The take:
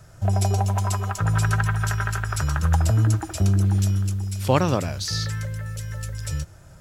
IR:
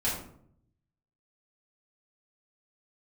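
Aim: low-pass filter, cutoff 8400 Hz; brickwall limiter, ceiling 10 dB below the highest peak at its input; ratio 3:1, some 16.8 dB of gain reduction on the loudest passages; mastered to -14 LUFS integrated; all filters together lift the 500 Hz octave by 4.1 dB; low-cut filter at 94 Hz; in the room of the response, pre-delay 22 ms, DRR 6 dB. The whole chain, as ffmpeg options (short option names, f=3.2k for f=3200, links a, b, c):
-filter_complex "[0:a]highpass=94,lowpass=8.4k,equalizer=f=500:t=o:g=5,acompressor=threshold=-35dB:ratio=3,alimiter=level_in=3dB:limit=-24dB:level=0:latency=1,volume=-3dB,asplit=2[a][b];[1:a]atrim=start_sample=2205,adelay=22[c];[b][c]afir=irnorm=-1:irlink=0,volume=-14dB[d];[a][d]amix=inputs=2:normalize=0,volume=22dB"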